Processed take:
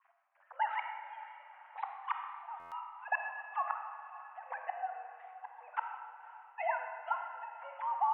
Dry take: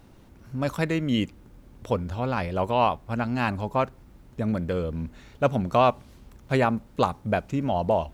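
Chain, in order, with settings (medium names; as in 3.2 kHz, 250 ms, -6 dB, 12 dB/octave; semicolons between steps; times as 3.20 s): formants replaced by sine waves; Doppler pass-by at 2.42 s, 14 m/s, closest 5.6 m; touch-sensitive flanger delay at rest 9.7 ms, full sweep at -24.5 dBFS; dynamic bell 1.3 kHz, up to -4 dB, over -50 dBFS, Q 2; inverted gate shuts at -33 dBFS, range -30 dB; trance gate "x..xxxxx." 130 bpm -12 dB; echo that smears into a reverb 542 ms, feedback 49%, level -15 dB; mistuned SSB +270 Hz 480–2300 Hz; algorithmic reverb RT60 1.6 s, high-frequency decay 0.7×, pre-delay 5 ms, DRR 3.5 dB; buffer glitch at 2.59 s, samples 512, times 10; trim +13.5 dB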